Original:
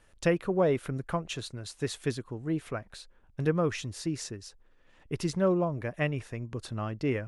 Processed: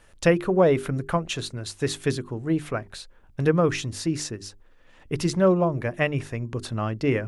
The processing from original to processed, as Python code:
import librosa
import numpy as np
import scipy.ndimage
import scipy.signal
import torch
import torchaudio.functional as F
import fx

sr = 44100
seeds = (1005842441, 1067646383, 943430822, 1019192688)

y = fx.hum_notches(x, sr, base_hz=50, count=8)
y = y * librosa.db_to_amplitude(7.0)